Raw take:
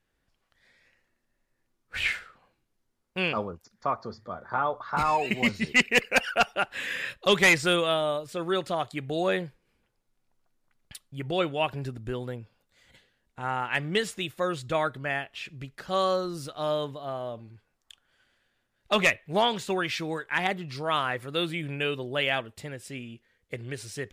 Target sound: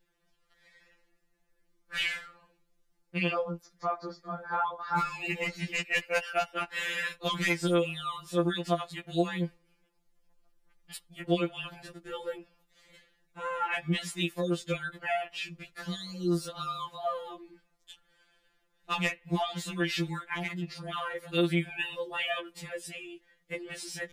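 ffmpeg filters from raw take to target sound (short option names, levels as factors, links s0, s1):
-filter_complex "[0:a]acompressor=threshold=0.0447:ratio=12,asettb=1/sr,asplit=3[s0][s1][s2];[s0]atrim=end=20.294[s3];[s1]atrim=start=20.29:end=21.32,asetpts=PTS-STARTPTS,afade=t=in:d=0.004:c=qsin,afade=t=out:st=1.026:d=0.004:c=qsin,tremolo=f=23:d=0.667[s4];[s2]atrim=start=21.316[s5];[s3][s4]acrossfade=d=0.004:c1=hsin:c2=qsin[s6];[s6][s5]acrossfade=d=0.004:c1=qsin:c2=hsin,afftfilt=real='re*2.83*eq(mod(b,8),0)':imag='im*2.83*eq(mod(b,8),0)':win_size=2048:overlap=0.75,volume=1.5"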